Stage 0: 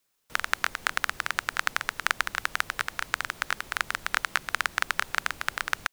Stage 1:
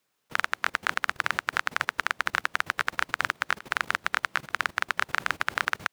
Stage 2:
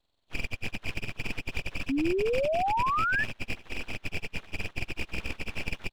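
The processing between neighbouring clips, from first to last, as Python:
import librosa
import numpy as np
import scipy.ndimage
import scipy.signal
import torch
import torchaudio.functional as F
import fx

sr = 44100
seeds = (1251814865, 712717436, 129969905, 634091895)

y1 = scipy.signal.sosfilt(scipy.signal.butter(2, 92.0, 'highpass', fs=sr, output='sos'), x)
y1 = fx.high_shelf(y1, sr, hz=4300.0, db=-9.5)
y1 = fx.level_steps(y1, sr, step_db=17)
y1 = F.gain(torch.from_numpy(y1), 8.0).numpy()
y2 = fx.freq_compress(y1, sr, knee_hz=1100.0, ratio=4.0)
y2 = np.abs(y2)
y2 = fx.spec_paint(y2, sr, seeds[0], shape='rise', start_s=1.89, length_s=1.35, low_hz=260.0, high_hz=1800.0, level_db=-22.0)
y2 = F.gain(torch.from_numpy(y2), -5.0).numpy()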